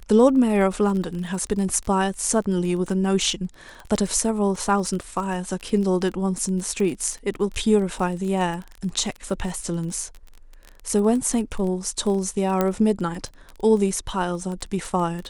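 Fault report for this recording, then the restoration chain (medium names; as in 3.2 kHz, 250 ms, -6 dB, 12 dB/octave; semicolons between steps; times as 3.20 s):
crackle 21 per s -28 dBFS
12.61 s: pop -8 dBFS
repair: de-click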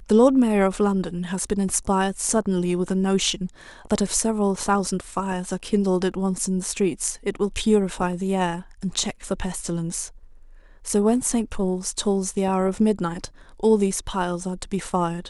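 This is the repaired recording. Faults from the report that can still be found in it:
12.61 s: pop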